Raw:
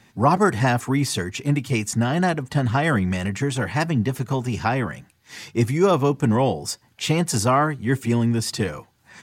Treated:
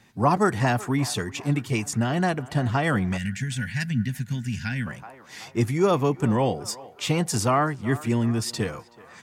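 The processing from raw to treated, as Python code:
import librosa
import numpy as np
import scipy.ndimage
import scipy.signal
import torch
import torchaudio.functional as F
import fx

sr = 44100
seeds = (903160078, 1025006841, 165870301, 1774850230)

y = fx.echo_banded(x, sr, ms=377, feedback_pct=59, hz=1000.0, wet_db=-16.5)
y = fx.spec_box(y, sr, start_s=3.18, length_s=1.69, low_hz=270.0, high_hz=1400.0, gain_db=-20)
y = y * 10.0 ** (-3.0 / 20.0)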